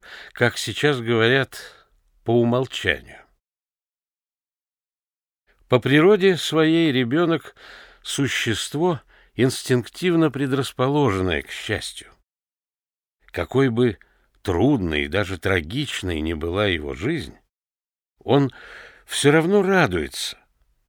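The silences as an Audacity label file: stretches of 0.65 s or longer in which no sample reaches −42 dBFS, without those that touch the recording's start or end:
3.220000	5.710000	silence
12.120000	13.280000	silence
17.370000	18.210000	silence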